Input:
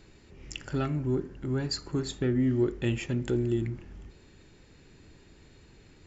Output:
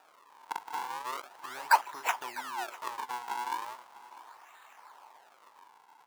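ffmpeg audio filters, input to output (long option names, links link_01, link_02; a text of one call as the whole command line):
ffmpeg -i in.wav -filter_complex "[0:a]acompressor=threshold=-29dB:ratio=4,crystalizer=i=5:c=0,acrusher=samples=41:mix=1:aa=0.000001:lfo=1:lforange=65.6:lforate=0.38,highpass=frequency=920:width_type=q:width=4.9,asplit=2[link_01][link_02];[link_02]aecho=0:1:650:0.119[link_03];[link_01][link_03]amix=inputs=2:normalize=0,volume=-4.5dB" out.wav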